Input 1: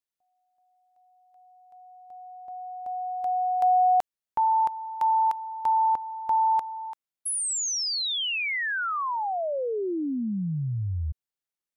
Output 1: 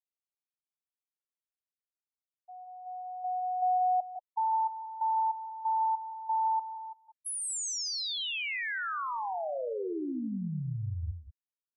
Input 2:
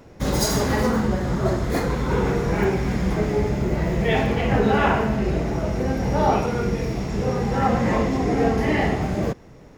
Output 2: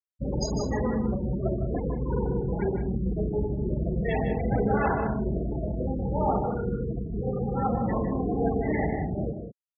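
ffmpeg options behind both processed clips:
-af "afftfilt=real='re*gte(hypot(re,im),0.158)':imag='im*gte(hypot(re,im),0.158)':win_size=1024:overlap=0.75,aecho=1:1:154.5|186.6:0.355|0.282,volume=-6.5dB"

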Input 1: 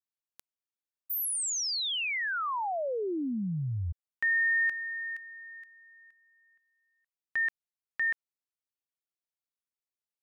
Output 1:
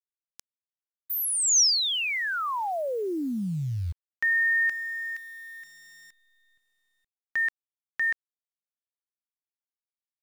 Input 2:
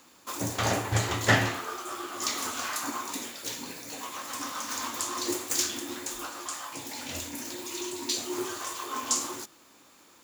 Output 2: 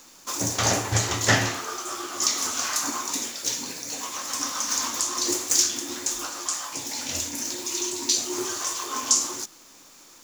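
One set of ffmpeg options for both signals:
-filter_complex "[0:a]equalizer=f=5.9k:w=1.7:g=10.5,asplit=2[a][b];[b]alimiter=limit=-12dB:level=0:latency=1:release=462,volume=-1dB[c];[a][c]amix=inputs=2:normalize=0,acrusher=bits=9:dc=4:mix=0:aa=0.000001,volume=-3dB"

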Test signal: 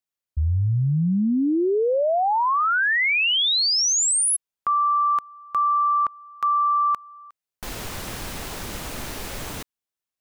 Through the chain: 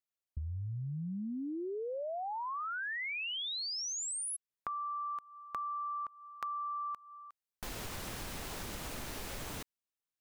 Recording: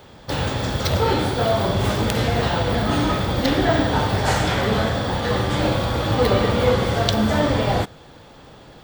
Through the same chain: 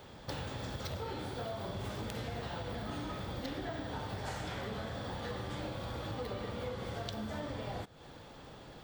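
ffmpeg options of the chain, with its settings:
-af "acompressor=threshold=-31dB:ratio=6:attack=20:release=238:knee=1:detection=rms,volume=-7dB"

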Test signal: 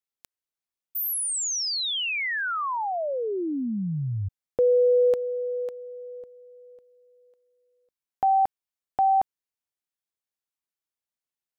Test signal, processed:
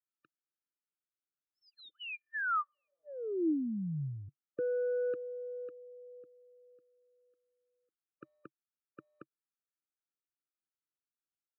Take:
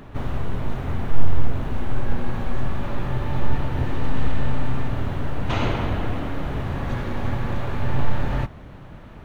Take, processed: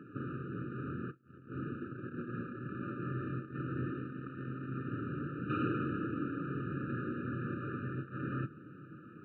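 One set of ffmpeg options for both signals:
-af "aresample=11025,asoftclip=type=tanh:threshold=-12.5dB,aresample=44100,highpass=f=130:w=0.5412,highpass=f=130:w=1.3066,equalizer=f=140:t=q:w=4:g=3,equalizer=f=320:t=q:w=4:g=9,equalizer=f=550:t=q:w=4:g=-9,equalizer=f=880:t=q:w=4:g=4,equalizer=f=1.3k:t=q:w=4:g=7,lowpass=f=2.4k:w=0.5412,lowpass=f=2.4k:w=1.3066,afftfilt=real='re*eq(mod(floor(b*sr/1024/600),2),0)':imag='im*eq(mod(floor(b*sr/1024/600),2),0)':win_size=1024:overlap=0.75,volume=-8.5dB"

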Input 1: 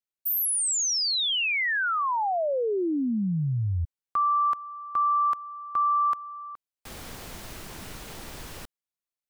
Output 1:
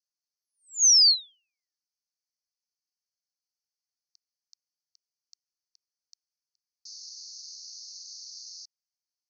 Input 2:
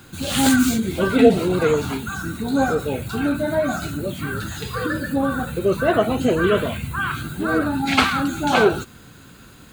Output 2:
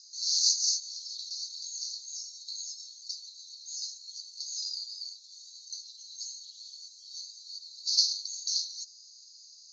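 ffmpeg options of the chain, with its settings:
-af "asuperpass=centerf=5300:order=12:qfactor=2.4,volume=9dB"

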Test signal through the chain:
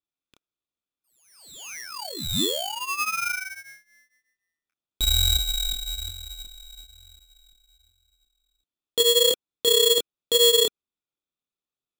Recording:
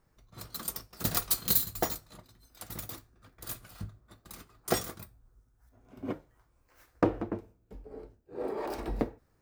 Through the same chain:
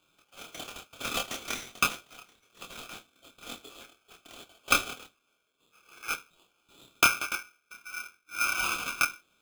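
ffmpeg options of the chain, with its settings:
-af "highpass=f=430:w=0.5412,highpass=f=430:w=1.3066,equalizer=f=470:t=q:w=4:g=5,equalizer=f=690:t=q:w=4:g=4,equalizer=f=980:t=q:w=4:g=-4,equalizer=f=1.6k:t=q:w=4:g=9,equalizer=f=2.4k:t=q:w=4:g=-6,equalizer=f=3.4k:t=q:w=4:g=-8,lowpass=f=3.8k:w=0.5412,lowpass=f=3.8k:w=1.3066,flanger=delay=22.5:depth=6.9:speed=1.1,aeval=exprs='val(0)*sgn(sin(2*PI*1900*n/s))':c=same,volume=8dB"

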